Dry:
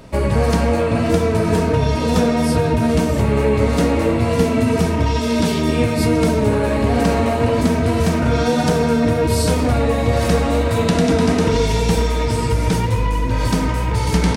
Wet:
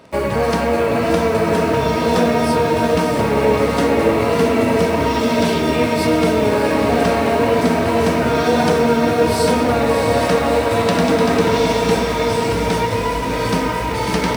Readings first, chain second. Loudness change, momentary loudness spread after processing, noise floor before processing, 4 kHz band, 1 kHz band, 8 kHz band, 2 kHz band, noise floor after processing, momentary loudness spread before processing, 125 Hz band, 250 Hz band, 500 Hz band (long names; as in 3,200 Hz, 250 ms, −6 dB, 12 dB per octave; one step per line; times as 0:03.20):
+1.0 dB, 3 LU, −19 dBFS, +2.0 dB, +4.5 dB, −0.5 dB, +4.0 dB, −20 dBFS, 2 LU, −5.5 dB, −0.5 dB, +3.0 dB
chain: high-pass filter 390 Hz 6 dB per octave
high-shelf EQ 5,100 Hz −8.5 dB
notch filter 6,800 Hz, Q 16
in parallel at −5 dB: bit reduction 6 bits
on the sum: feedback delay with all-pass diffusion 657 ms, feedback 62%, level −6 dB